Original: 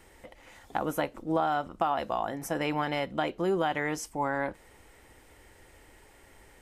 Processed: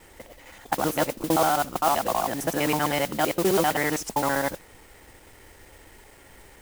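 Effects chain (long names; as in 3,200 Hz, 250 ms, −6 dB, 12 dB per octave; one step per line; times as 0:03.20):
reversed piece by piece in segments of 65 ms
noise that follows the level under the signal 10 dB
level +5.5 dB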